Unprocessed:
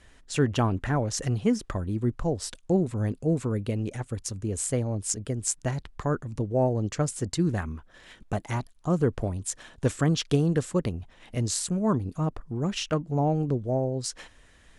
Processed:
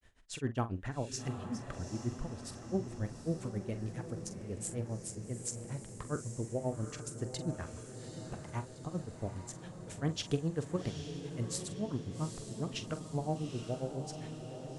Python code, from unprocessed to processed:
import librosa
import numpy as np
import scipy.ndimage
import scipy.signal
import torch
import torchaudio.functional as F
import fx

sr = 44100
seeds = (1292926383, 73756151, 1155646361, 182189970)

y = fx.granulator(x, sr, seeds[0], grain_ms=129.0, per_s=7.4, spray_ms=13.0, spread_st=0)
y = fx.doubler(y, sr, ms=44.0, db=-12.0)
y = fx.echo_diffused(y, sr, ms=814, feedback_pct=60, wet_db=-8.0)
y = y * 10.0 ** (-7.5 / 20.0)